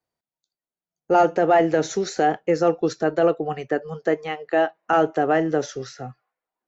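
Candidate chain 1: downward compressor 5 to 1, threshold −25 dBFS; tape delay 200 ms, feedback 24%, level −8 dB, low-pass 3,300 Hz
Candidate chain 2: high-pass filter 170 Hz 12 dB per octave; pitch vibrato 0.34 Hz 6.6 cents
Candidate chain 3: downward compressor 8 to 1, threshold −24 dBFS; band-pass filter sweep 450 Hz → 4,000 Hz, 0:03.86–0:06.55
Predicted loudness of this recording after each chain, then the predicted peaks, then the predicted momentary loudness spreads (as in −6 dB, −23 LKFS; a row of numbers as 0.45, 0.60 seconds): −30.0, −21.5, −34.0 LKFS; −11.5, −7.5, −16.0 dBFS; 7, 10, 9 LU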